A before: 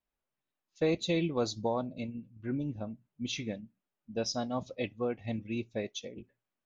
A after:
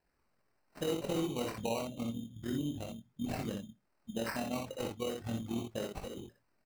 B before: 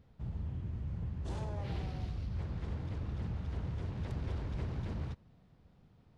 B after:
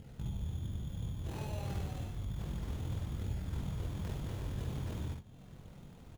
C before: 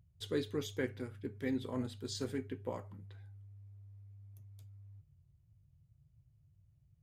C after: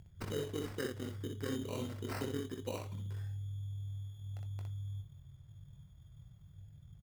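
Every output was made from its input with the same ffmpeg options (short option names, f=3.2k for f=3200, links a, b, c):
-filter_complex "[0:a]acompressor=threshold=-57dB:ratio=2,acrusher=samples=13:mix=1:aa=0.000001,flanger=delay=0.4:depth=9.7:regen=-60:speed=0.3:shape=sinusoidal,tremolo=f=41:d=0.621,asplit=2[a][b];[b]aecho=0:1:21|61:0.335|0.631[c];[a][c]amix=inputs=2:normalize=0,volume=16.5dB"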